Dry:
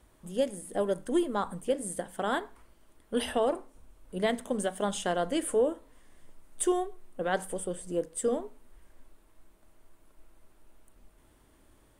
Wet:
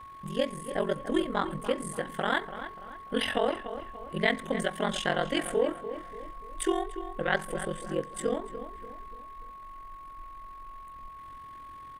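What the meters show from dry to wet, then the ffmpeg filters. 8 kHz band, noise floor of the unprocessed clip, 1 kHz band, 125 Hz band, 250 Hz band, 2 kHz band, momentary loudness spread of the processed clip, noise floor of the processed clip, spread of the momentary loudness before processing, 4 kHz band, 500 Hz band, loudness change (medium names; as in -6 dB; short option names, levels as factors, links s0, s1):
-4.5 dB, -62 dBFS, +2.0 dB, +4.0 dB, 0.0 dB, +7.5 dB, 17 LU, -46 dBFS, 8 LU, +5.0 dB, -0.5 dB, 0.0 dB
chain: -filter_complex "[0:a]aeval=exprs='val(0)*sin(2*PI*22*n/s)':c=same,asplit=2[s0][s1];[s1]acompressor=threshold=0.00708:ratio=6,volume=0.75[s2];[s0][s2]amix=inputs=2:normalize=0,equalizer=f=125:t=o:w=1:g=6,equalizer=f=2000:t=o:w=1:g=11,equalizer=f=4000:t=o:w=1:g=5,equalizer=f=8000:t=o:w=1:g=-5,aeval=exprs='val(0)+0.00631*sin(2*PI*1100*n/s)':c=same,asplit=2[s3][s4];[s4]adelay=291,lowpass=f=2400:p=1,volume=0.282,asplit=2[s5][s6];[s6]adelay=291,lowpass=f=2400:p=1,volume=0.43,asplit=2[s7][s8];[s8]adelay=291,lowpass=f=2400:p=1,volume=0.43,asplit=2[s9][s10];[s10]adelay=291,lowpass=f=2400:p=1,volume=0.43[s11];[s3][s5][s7][s9][s11]amix=inputs=5:normalize=0"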